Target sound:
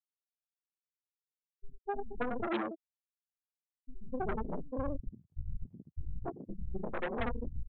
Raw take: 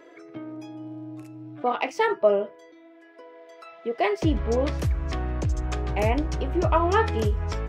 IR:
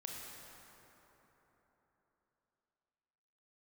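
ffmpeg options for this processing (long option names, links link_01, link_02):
-filter_complex "[0:a]afftfilt=real='re':imag='-im':win_size=8192:overlap=0.75,asplit=2[link_01][link_02];[link_02]adelay=128,lowpass=frequency=2800:poles=1,volume=-12.5dB,asplit=2[link_03][link_04];[link_04]adelay=128,lowpass=frequency=2800:poles=1,volume=0.18[link_05];[link_03][link_05]amix=inputs=2:normalize=0[link_06];[link_01][link_06]amix=inputs=2:normalize=0,afftfilt=real='re*gte(hypot(re,im),0.316)':imag='im*gte(hypot(re,im),0.316)':win_size=1024:overlap=0.75,flanger=delay=16.5:depth=5.4:speed=0.86,equalizer=frequency=2800:width=1.7:gain=-8.5,aeval=exprs='0.0944*(cos(1*acos(clip(val(0)/0.0944,-1,1)))-cos(1*PI/2))+0.0266*(cos(8*acos(clip(val(0)/0.0944,-1,1)))-cos(8*PI/2))':channel_layout=same,asetrate=24046,aresample=44100,atempo=1.83401,aresample=8000,asoftclip=type=tanh:threshold=-26.5dB,aresample=44100,acompressor=threshold=-36dB:ratio=6,lowshelf=frequency=500:gain=-7,acrossover=split=160[link_07][link_08];[link_08]adelay=250[link_09];[link_07][link_09]amix=inputs=2:normalize=0,volume=11dB"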